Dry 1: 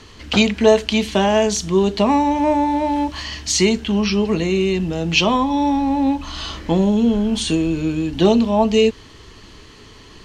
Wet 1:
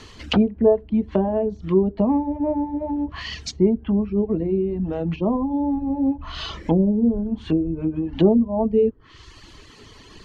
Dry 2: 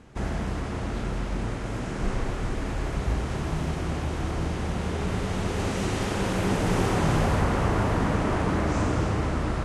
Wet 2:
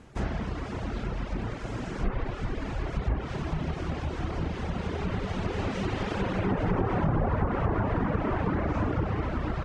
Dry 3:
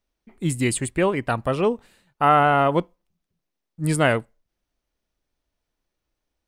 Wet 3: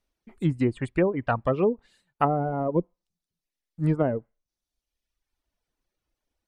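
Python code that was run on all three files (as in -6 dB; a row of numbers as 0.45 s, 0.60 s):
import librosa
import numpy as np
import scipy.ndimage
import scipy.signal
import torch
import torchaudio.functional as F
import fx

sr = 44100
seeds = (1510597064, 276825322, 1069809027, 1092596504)

y = fx.env_lowpass_down(x, sr, base_hz=510.0, full_db=-15.5)
y = fx.dereverb_blind(y, sr, rt60_s=1.1)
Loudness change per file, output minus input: -4.0 LU, -3.0 LU, -5.0 LU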